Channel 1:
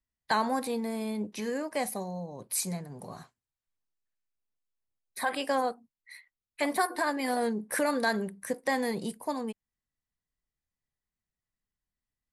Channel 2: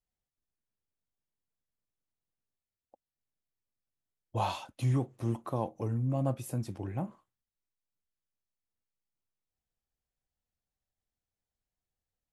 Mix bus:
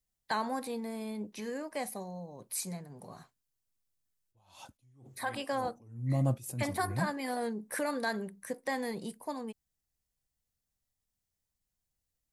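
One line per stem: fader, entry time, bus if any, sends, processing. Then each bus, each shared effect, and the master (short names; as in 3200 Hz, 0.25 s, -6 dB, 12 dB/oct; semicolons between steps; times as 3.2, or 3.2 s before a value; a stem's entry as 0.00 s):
-5.5 dB, 0.00 s, no send, dry
-2.0 dB, 0.00 s, no send, tone controls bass +6 dB, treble +10 dB; attack slew limiter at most 110 dB/s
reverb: off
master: dry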